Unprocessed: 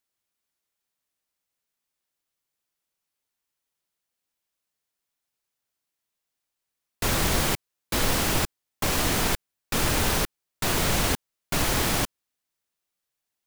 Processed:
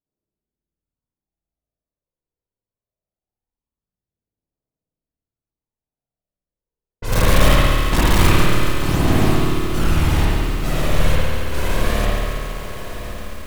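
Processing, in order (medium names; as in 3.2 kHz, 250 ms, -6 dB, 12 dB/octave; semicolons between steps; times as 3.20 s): level-controlled noise filter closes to 580 Hz, open at -23 dBFS; bass shelf 410 Hz +8 dB; 7.12–8.30 s: waveshaping leveller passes 5; phaser 0.22 Hz, delay 2.2 ms, feedback 54%; hard clipper -9.5 dBFS, distortion -8 dB; echo that smears into a reverb 1100 ms, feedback 45%, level -11 dB; spring tank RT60 1.4 s, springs 55 ms, chirp 45 ms, DRR -7.5 dB; bit-crushed delay 139 ms, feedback 80%, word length 5-bit, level -7.5 dB; trim -9 dB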